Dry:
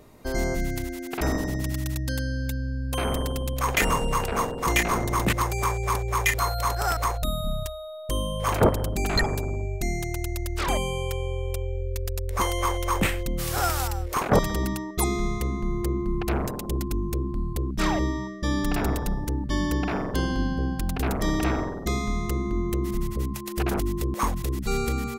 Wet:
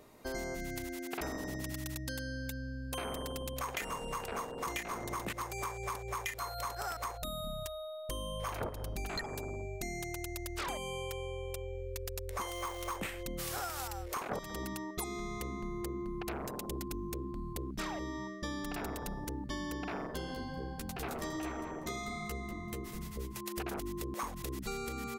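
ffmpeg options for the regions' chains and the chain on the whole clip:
ffmpeg -i in.wav -filter_complex "[0:a]asettb=1/sr,asplit=3[link_01][link_02][link_03];[link_01]atrim=end=7.674[link_04];[link_02]atrim=start=7.67:end=9.09,asetpts=PTS-STARTPTS,afade=type=in:duration=0.004:curve=qsin,afade=type=out:start_time=1.416:duration=0.004:curve=qsin,bandreject=frequency=7600:width=7.3,bandreject=frequency=420.6:width_type=h:width=4,bandreject=frequency=841.2:width_type=h:width=4,bandreject=frequency=1261.8:width_type=h:width=4,bandreject=frequency=1682.4:width_type=h:width=4,bandreject=frequency=2103:width_type=h:width=4,bandreject=frequency=2523.6:width_type=h:width=4,bandreject=frequency=2944.2:width_type=h:width=4,bandreject=frequency=3364.8:width_type=h:width=4,bandreject=frequency=3785.4:width_type=h:width=4,bandreject=frequency=4206:width_type=h:width=4,bandreject=frequency=4626.6:width_type=h:width=4,bandreject=frequency=5047.2:width_type=h:width=4,bandreject=frequency=5467.8:width_type=h:width=4,bandreject=frequency=5888.4:width_type=h:width=4,bandreject=frequency=6309:width_type=h:width=4,bandreject=frequency=6729.6:width_type=h:width=4,asubboost=boost=5.5:cutoff=130[link_05];[link_03]atrim=start=9.086[link_06];[link_04][link_05]acrossfade=duration=0.004:curve1=hsin:curve2=qsin[link_07];[link_07][link_06]acrossfade=duration=0.004:curve1=qsin:curve2=hsin,asettb=1/sr,asplit=3[link_08][link_09][link_10];[link_08]atrim=end=12.474[link_11];[link_09]atrim=start=12.47:end=12.96,asetpts=PTS-STARTPTS,afade=type=in:duration=0.004:curve=qsin,afade=type=out:start_time=0.486:duration=0.004:curve=qsin,aeval=exprs='val(0)+0.00316*sin(2*PI*1200*n/s)':channel_layout=same,acrusher=bits=4:mode=log:mix=0:aa=0.000001[link_12];[link_10]atrim=start=12.956[link_13];[link_11][link_12]acrossfade=duration=0.004:curve1=hsin:curve2=qsin[link_14];[link_14][link_13]acrossfade=duration=0.004:curve1=qsin:curve2=hsin,asettb=1/sr,asplit=3[link_15][link_16][link_17];[link_15]atrim=end=20.074[link_18];[link_16]atrim=start=20.07:end=23.37,asetpts=PTS-STARTPTS,afade=type=in:duration=0.004:curve=qsin,afade=type=out:start_time=3.296:duration=0.004:curve=qsin,asplit=2[link_19][link_20];[link_20]adelay=13,volume=-3.5dB[link_21];[link_19][link_21]amix=inputs=2:normalize=0,atrim=end_sample=145530,aecho=1:1:193|386:0.251|0.0452,atrim=end_sample=145530,flanger=delay=4.4:depth=4.2:regen=-56:speed=1.3:shape=sinusoidal[link_22];[link_17]atrim=start=23.366[link_23];[link_18][link_22]acrossfade=duration=0.004:curve1=hsin:curve2=qsin[link_24];[link_24][link_23]acrossfade=duration=0.004:curve1=qsin:curve2=hsin,lowshelf=frequency=190:gain=-10,acompressor=threshold=-31dB:ratio=10,volume=-4dB" out.wav

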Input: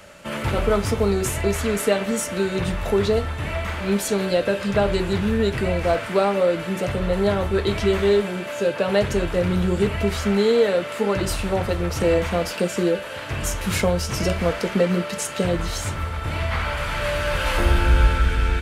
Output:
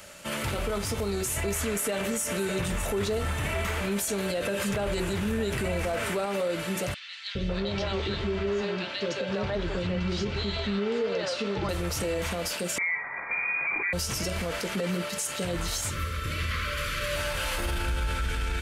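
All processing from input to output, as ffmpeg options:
ffmpeg -i in.wav -filter_complex "[0:a]asettb=1/sr,asplit=3[link_01][link_02][link_03];[link_01]atrim=end=1.364[link_04];[link_02]atrim=start=1.36:end=6.26,asetpts=PTS-STARTPTS,afade=type=in:duration=0.004:curve=qsin,afade=type=out:start_time=4.896:duration=0.004:curve=qsin,equalizer=frequency=4300:width_type=o:width=0.71:gain=-5,acontrast=37,aecho=1:1:609:0.141,atrim=end_sample=216090[link_05];[link_03]atrim=start=6.256[link_06];[link_04][link_05]acrossfade=duration=0.004:curve1=hsin:curve2=qsin[link_07];[link_07][link_06]acrossfade=duration=0.004:curve1=qsin:curve2=hsin,asettb=1/sr,asplit=3[link_08][link_09][link_10];[link_08]atrim=end=6.944[link_11];[link_09]atrim=start=6.94:end=11.69,asetpts=PTS-STARTPTS,afade=type=in:duration=0.004:curve=qsin,afade=type=out:start_time=4.746:duration=0.004:curve=qsin,lowpass=frequency=5000:width=0.5412,lowpass=frequency=5000:width=1.3066,acrossover=split=510|2000[link_12][link_13][link_14];[link_12]adelay=410[link_15];[link_13]adelay=550[link_16];[link_15][link_16][link_14]amix=inputs=3:normalize=0,atrim=end_sample=209475[link_17];[link_10]atrim=start=11.686[link_18];[link_11][link_17]acrossfade=duration=0.004:curve1=hsin:curve2=qsin[link_19];[link_19][link_18]acrossfade=duration=0.004:curve1=qsin:curve2=hsin,asettb=1/sr,asplit=3[link_20][link_21][link_22];[link_20]atrim=end=12.784[link_23];[link_21]atrim=start=12.78:end=13.93,asetpts=PTS-STARTPTS,afade=type=in:duration=0.004:curve=qsin,afade=type=out:start_time=1.146:duration=0.004:curve=qsin,acrusher=bits=8:dc=4:mix=0:aa=0.000001,lowpass=frequency=2100:width_type=q:width=0.5098,lowpass=frequency=2100:width_type=q:width=0.6013,lowpass=frequency=2100:width_type=q:width=0.9,lowpass=frequency=2100:width_type=q:width=2.563,afreqshift=-2500[link_24];[link_22]atrim=start=13.926[link_25];[link_23][link_24]acrossfade=duration=0.004:curve1=hsin:curve2=qsin[link_26];[link_26][link_25]acrossfade=duration=0.004:curve1=qsin:curve2=hsin,asettb=1/sr,asplit=3[link_27][link_28][link_29];[link_27]atrim=end=15.904[link_30];[link_28]atrim=start=15.9:end=17.16,asetpts=PTS-STARTPTS,afade=type=in:duration=0.004:curve=qsin,afade=type=out:start_time=1.256:duration=0.004:curve=qsin,asuperstop=centerf=800:order=20:qfactor=2,equalizer=frequency=8500:width=3.9:gain=-5.5[link_31];[link_29]atrim=start=17.156[link_32];[link_30][link_31]acrossfade=duration=0.004:curve1=hsin:curve2=qsin[link_33];[link_33][link_32]acrossfade=duration=0.004:curve1=qsin:curve2=hsin,highshelf=frequency=3500:gain=11.5,alimiter=limit=-16.5dB:level=0:latency=1:release=53,volume=-4.5dB" out.wav

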